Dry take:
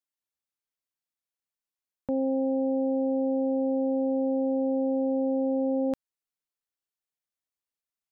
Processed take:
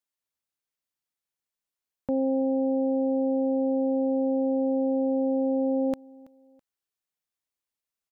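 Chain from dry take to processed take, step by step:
repeating echo 328 ms, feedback 33%, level −23 dB
level +1.5 dB

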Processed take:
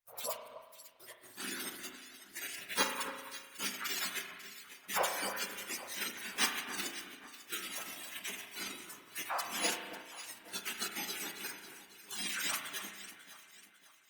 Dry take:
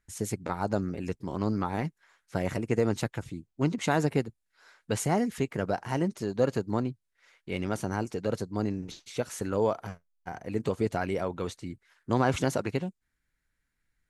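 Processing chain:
frequency axis turned over on the octave scale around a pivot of 1,500 Hz
0:12.11–0:12.56: low-pass filter 9,100 Hz 12 dB per octave
gate on every frequency bin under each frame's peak −25 dB weak
noise reduction from a noise print of the clip's start 10 dB
leveller curve on the samples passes 1
0:00.42–0:01.00: gate with flip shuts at −58 dBFS, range −29 dB
0:08.03–0:08.68: all-pass dispersion lows, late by 54 ms, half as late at 490 Hz
on a send: delay that swaps between a low-pass and a high-pass 273 ms, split 1,700 Hz, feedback 64%, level −10 dB
on the sum: spring reverb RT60 1.4 s, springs 35 ms, chirp 70 ms, DRR 5 dB
level +14 dB
Opus 32 kbit/s 48,000 Hz

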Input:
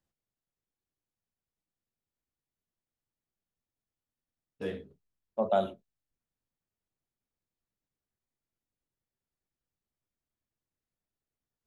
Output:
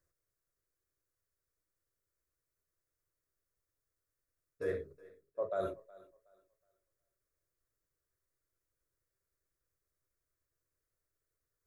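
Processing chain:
reversed playback
downward compressor 6 to 1, threshold −35 dBFS, peak gain reduction 13 dB
reversed playback
phaser with its sweep stopped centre 820 Hz, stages 6
feedback echo with a high-pass in the loop 369 ms, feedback 27%, high-pass 210 Hz, level −21 dB
level +5.5 dB

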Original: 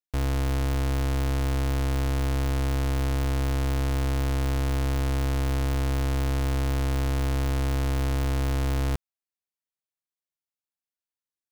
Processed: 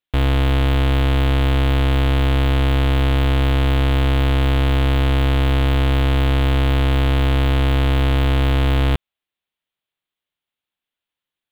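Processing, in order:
high shelf with overshoot 4,300 Hz −8.5 dB, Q 3
level +9 dB

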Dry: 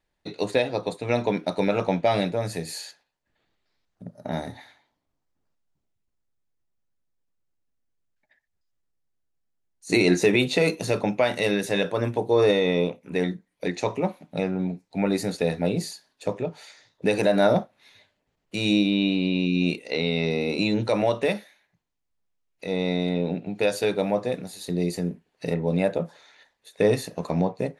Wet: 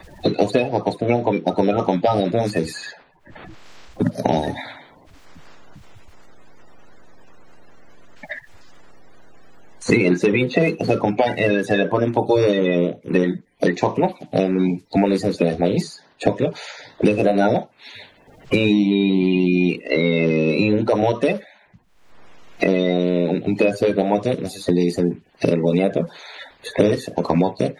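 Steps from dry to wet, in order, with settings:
spectral magnitudes quantised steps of 30 dB
low-pass filter 3,700 Hz 6 dB per octave, from 0:00.98 1,100 Hz, from 0:02.25 2,400 Hz
multiband upward and downward compressor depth 100%
level +6.5 dB

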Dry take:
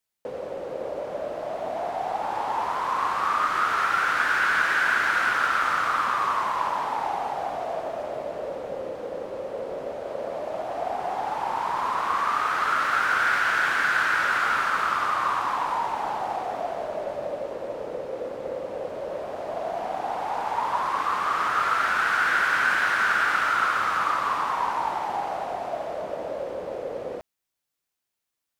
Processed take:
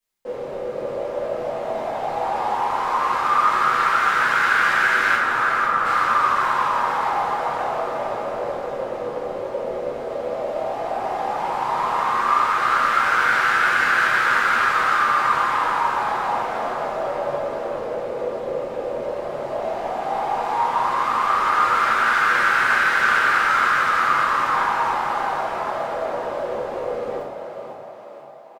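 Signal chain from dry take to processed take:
0:05.15–0:05.85: Butterworth low-pass 1,400 Hz 72 dB per octave
on a send: echo with shifted repeats 493 ms, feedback 55%, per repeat +39 Hz, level −7 dB
on the sum: rectangular room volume 82 cubic metres, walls mixed, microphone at 2.1 metres
level −5.5 dB

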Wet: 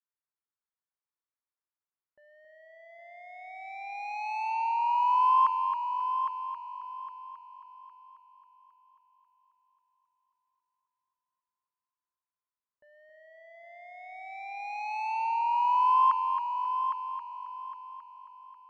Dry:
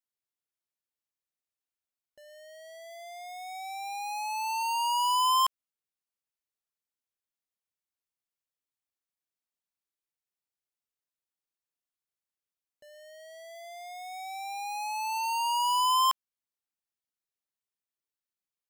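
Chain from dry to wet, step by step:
low-pass that shuts in the quiet parts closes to 1,100 Hz, open at −28.5 dBFS
flat-topped bell 1,500 Hz +11.5 dB
treble cut that deepens with the level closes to 1,300 Hz, closed at −17.5 dBFS
echo machine with several playback heads 270 ms, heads first and third, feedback 47%, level −8 dB
level −7.5 dB

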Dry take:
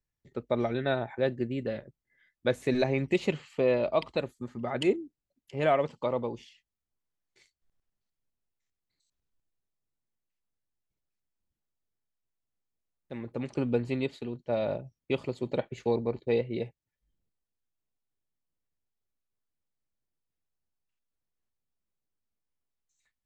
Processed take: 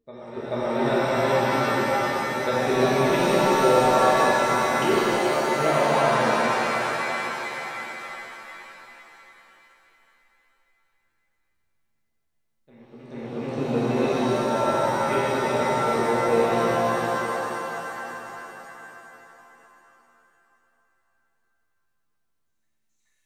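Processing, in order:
backwards echo 432 ms −13.5 dB
reverb with rising layers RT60 3.7 s, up +7 semitones, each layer −2 dB, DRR −8.5 dB
level −3.5 dB

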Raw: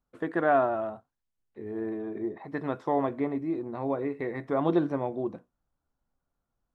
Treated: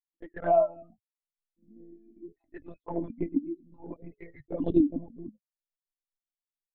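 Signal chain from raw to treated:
spectral dynamics exaggerated over time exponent 3
one-pitch LPC vocoder at 8 kHz 170 Hz
hollow resonant body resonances 280/610 Hz, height 14 dB, ringing for 35 ms
flanger swept by the level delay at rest 3.6 ms, full sweep at −22 dBFS
parametric band 1,100 Hz −3.5 dB 0.7 octaves
level −1.5 dB

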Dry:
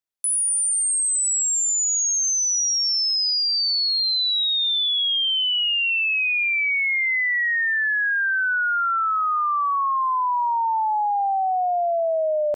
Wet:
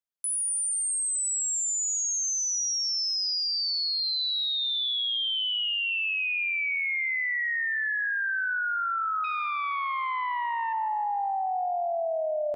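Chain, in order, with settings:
0:09.24–0:10.73: phase distortion by the signal itself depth 0.11 ms
echo with a time of its own for lows and highs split 1,200 Hz, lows 252 ms, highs 155 ms, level −12.5 dB
level −7 dB

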